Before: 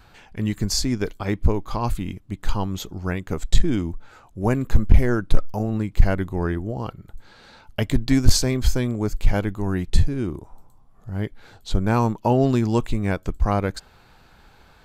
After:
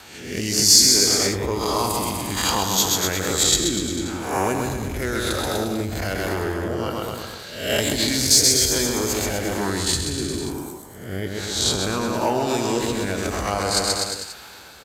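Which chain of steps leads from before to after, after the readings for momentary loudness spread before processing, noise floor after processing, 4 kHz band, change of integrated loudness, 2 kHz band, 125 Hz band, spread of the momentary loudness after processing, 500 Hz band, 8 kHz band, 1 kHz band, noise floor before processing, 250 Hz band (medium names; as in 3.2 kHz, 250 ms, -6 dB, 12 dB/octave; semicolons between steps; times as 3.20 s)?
12 LU, -41 dBFS, +13.0 dB, +4.0 dB, +6.0 dB, -6.5 dB, 15 LU, +3.0 dB, +15.5 dB, +4.0 dB, -53 dBFS, -2.0 dB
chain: reverse spectral sustain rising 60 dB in 0.71 s; high-pass 51 Hz 24 dB/octave; peaking EQ 75 Hz +2.5 dB; doubling 21 ms -13 dB; in parallel at -12 dB: sine folder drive 10 dB, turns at -0.5 dBFS; on the sum: rotary cabinet horn 1.1 Hz; transient shaper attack 0 dB, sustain +5 dB; on a send: bouncing-ball echo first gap 130 ms, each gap 0.9×, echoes 5; on the sum: compression, threshold -17 dBFS, peak gain reduction 11.5 dB; tone controls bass -13 dB, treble +11 dB; trim +2 dB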